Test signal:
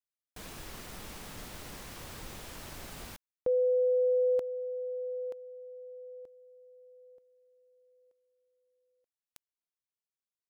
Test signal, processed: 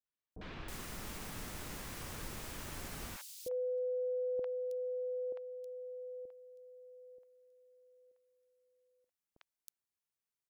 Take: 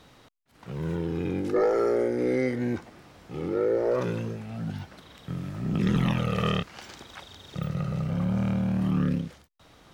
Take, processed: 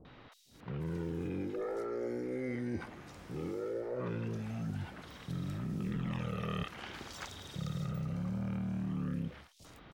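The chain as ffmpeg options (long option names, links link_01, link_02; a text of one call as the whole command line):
ffmpeg -i in.wav -filter_complex "[0:a]areverse,acompressor=threshold=-37dB:ratio=6:attack=29:release=100:knee=6,areverse,acrossover=split=640|3800[link_01][link_02][link_03];[link_02]adelay=50[link_04];[link_03]adelay=320[link_05];[link_01][link_04][link_05]amix=inputs=3:normalize=0,volume=1dB" out.wav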